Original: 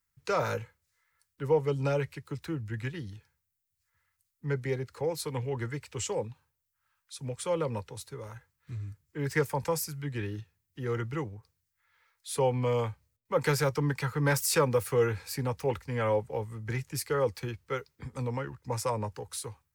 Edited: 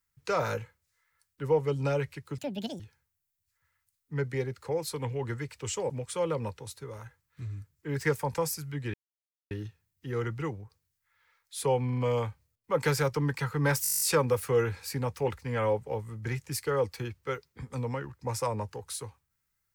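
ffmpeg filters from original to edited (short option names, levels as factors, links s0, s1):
-filter_complex "[0:a]asplit=17[s0][s1][s2][s3][s4][s5][s6][s7][s8][s9][s10][s11][s12][s13][s14][s15][s16];[s0]atrim=end=2.384[s17];[s1]atrim=start=2.38:end=3.12,asetpts=PTS-STARTPTS,asetrate=78057,aresample=44100,atrim=end_sample=18437,asetpts=PTS-STARTPTS[s18];[s2]atrim=start=3.116:end=6.222[s19];[s3]atrim=start=7.198:end=10.24,asetpts=PTS-STARTPTS,afade=t=out:st=3.038:d=0.004:c=hsin,apad=pad_dur=0.57[s20];[s4]atrim=start=10.24:end=12.632,asetpts=PTS-STARTPTS,afade=t=in:d=0.004:c=hsin[s21];[s5]atrim=start=12.588:end=12.632[s22];[s6]atrim=start=12.588:end=12.632[s23];[s7]atrim=start=12.588:end=14.462[s24];[s8]atrim=start=14.438:end=14.462[s25];[s9]atrim=start=14.438:end=14.462[s26];[s10]atrim=start=14.438:end=14.462[s27];[s11]atrim=start=14.438:end=14.462[s28];[s12]atrim=start=14.438:end=14.462[s29];[s13]atrim=start=14.438:end=14.462[s30];[s14]atrim=start=14.438:end=14.462[s31];[s15]atrim=start=14.438:end=14.462[s32];[s16]atrim=start=14.438[s33];[s17][s18]acrossfade=d=0.004:c1=hsin:c2=hsin[s34];[s34][s19]acrossfade=d=0.004:c1=hsin:c2=hsin[s35];[s20][s21]concat=n=2:v=0:a=1[s36];[s35][s36]acrossfade=d=0.004:c1=hsin:c2=hsin[s37];[s37][s22]acrossfade=d=0.004:c1=hsin:c2=hsin[s38];[s38][s23]acrossfade=d=0.004:c1=hsin:c2=hsin[s39];[s39][s24]acrossfade=d=0.004:c1=hsin:c2=hsin[s40];[s40][s25]acrossfade=d=0.004:c1=hsin:c2=hsin[s41];[s41][s26]acrossfade=d=0.004:c1=hsin:c2=hsin[s42];[s42][s27]acrossfade=d=0.004:c1=hsin:c2=hsin[s43];[s43][s28]acrossfade=d=0.004:c1=hsin:c2=hsin[s44];[s44][s29]acrossfade=d=0.004:c1=hsin:c2=hsin[s45];[s45][s30]acrossfade=d=0.004:c1=hsin:c2=hsin[s46];[s46][s31]acrossfade=d=0.004:c1=hsin:c2=hsin[s47];[s47][s32]acrossfade=d=0.004:c1=hsin:c2=hsin[s48];[s48][s33]acrossfade=d=0.004:c1=hsin:c2=hsin"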